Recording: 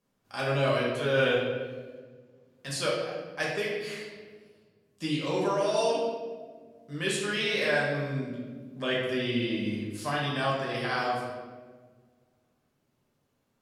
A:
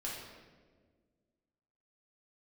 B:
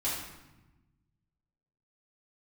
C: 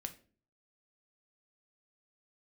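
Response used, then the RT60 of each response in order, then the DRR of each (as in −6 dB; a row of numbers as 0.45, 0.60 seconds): A; 1.6, 1.0, 0.45 seconds; −5.5, −9.5, 6.5 decibels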